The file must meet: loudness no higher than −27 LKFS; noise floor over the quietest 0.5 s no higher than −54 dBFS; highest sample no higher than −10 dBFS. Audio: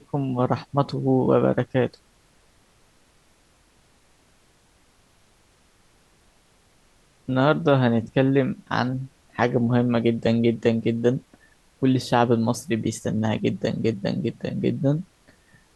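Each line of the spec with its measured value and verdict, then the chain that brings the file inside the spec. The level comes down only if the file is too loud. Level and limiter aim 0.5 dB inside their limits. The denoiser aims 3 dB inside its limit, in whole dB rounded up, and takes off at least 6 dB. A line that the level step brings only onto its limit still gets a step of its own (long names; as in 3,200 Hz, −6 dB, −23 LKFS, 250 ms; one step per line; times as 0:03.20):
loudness −23.0 LKFS: out of spec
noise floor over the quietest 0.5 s −60 dBFS: in spec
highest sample −4.5 dBFS: out of spec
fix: level −4.5 dB
brickwall limiter −10.5 dBFS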